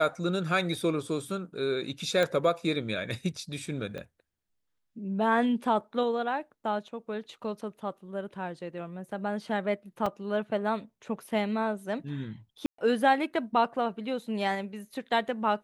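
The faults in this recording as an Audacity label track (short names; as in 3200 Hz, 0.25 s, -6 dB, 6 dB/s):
2.230000	2.230000	pop -15 dBFS
3.980000	3.980000	pop -26 dBFS
10.060000	10.060000	gap 4 ms
12.660000	12.780000	gap 0.124 s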